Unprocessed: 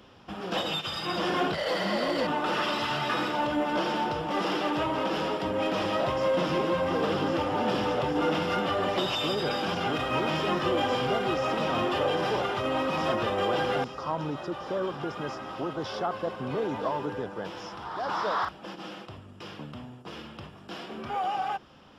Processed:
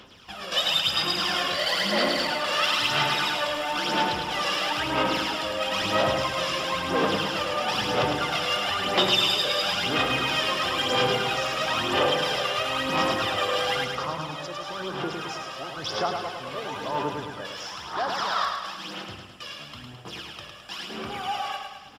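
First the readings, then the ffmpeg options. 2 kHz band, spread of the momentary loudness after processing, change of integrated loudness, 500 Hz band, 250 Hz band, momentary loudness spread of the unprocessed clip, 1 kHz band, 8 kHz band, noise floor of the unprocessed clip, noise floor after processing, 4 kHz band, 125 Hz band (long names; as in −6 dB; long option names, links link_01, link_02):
+6.0 dB, 13 LU, +3.5 dB, −0.5 dB, −2.5 dB, 13 LU, +2.0 dB, +11.5 dB, −48 dBFS, −43 dBFS, +9.5 dB, −0.5 dB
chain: -af "tiltshelf=frequency=1400:gain=-8,aphaser=in_gain=1:out_gain=1:delay=1.8:decay=0.66:speed=1:type=sinusoidal,aecho=1:1:106|212|318|424|530|636|742:0.562|0.309|0.17|0.0936|0.0515|0.0283|0.0156"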